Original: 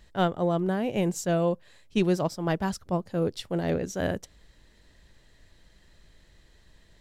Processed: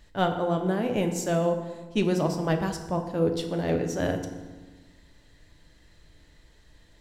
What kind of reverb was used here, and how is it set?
FDN reverb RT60 1.3 s, low-frequency decay 1.35×, high-frequency decay 0.65×, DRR 4.5 dB

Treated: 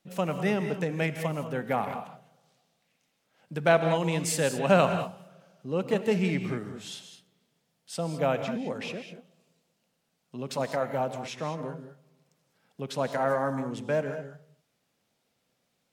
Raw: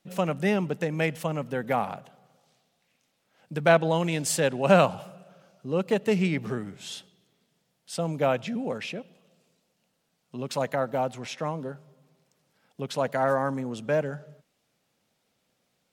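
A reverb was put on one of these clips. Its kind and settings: non-linear reverb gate 0.23 s rising, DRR 7.5 dB; gain -2.5 dB

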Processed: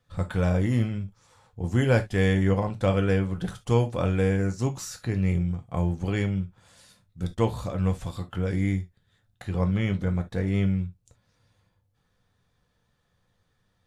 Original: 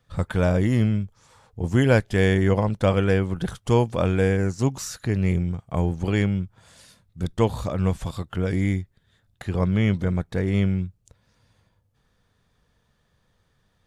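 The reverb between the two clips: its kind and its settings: non-linear reverb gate 90 ms falling, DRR 5 dB; gain -5 dB

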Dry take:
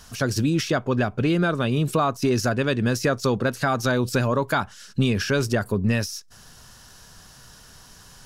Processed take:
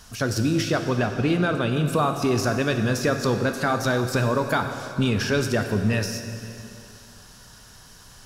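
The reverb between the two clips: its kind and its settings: plate-style reverb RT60 2.7 s, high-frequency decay 0.95×, DRR 5.5 dB; gain -1 dB

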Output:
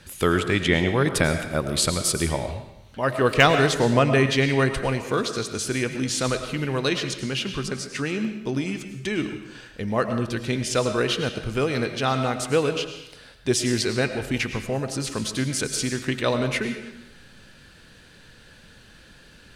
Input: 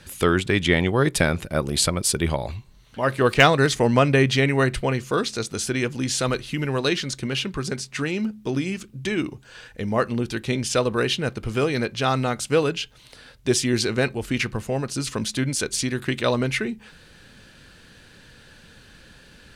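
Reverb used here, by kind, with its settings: digital reverb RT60 0.84 s, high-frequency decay 0.95×, pre-delay 65 ms, DRR 7.5 dB; gain -1.5 dB

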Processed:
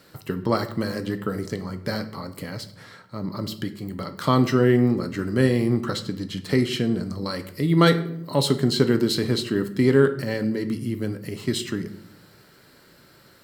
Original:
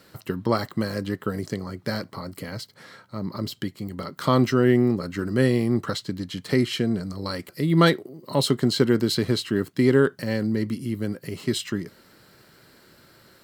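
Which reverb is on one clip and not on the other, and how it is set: shoebox room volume 150 m³, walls mixed, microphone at 0.34 m

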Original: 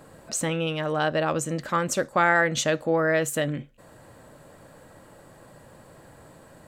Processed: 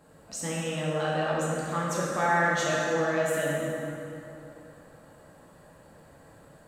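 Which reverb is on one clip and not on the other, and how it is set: plate-style reverb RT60 3.1 s, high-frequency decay 0.6×, DRR -6 dB; gain -10.5 dB

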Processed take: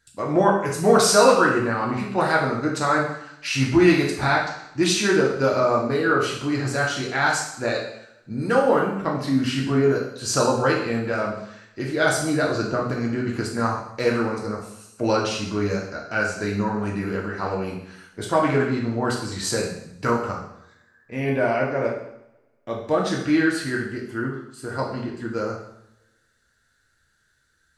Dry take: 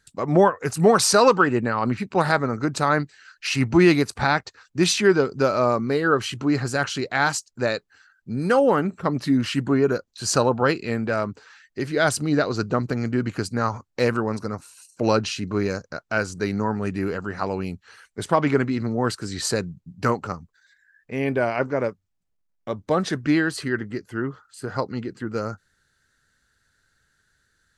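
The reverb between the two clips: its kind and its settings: two-slope reverb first 0.72 s, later 1.9 s, from -26 dB, DRR -3 dB; gain -4 dB

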